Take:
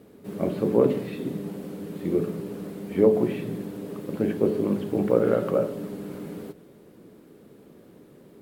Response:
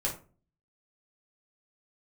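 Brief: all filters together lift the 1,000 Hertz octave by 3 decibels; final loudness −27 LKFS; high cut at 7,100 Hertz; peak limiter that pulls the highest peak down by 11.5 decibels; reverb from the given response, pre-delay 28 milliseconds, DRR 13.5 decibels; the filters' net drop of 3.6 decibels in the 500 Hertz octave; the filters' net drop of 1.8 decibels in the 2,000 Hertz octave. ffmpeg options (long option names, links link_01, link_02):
-filter_complex "[0:a]lowpass=7100,equalizer=frequency=500:width_type=o:gain=-5.5,equalizer=frequency=1000:width_type=o:gain=7,equalizer=frequency=2000:width_type=o:gain=-5,alimiter=limit=-19dB:level=0:latency=1,asplit=2[link_01][link_02];[1:a]atrim=start_sample=2205,adelay=28[link_03];[link_02][link_03]afir=irnorm=-1:irlink=0,volume=-19dB[link_04];[link_01][link_04]amix=inputs=2:normalize=0,volume=4.5dB"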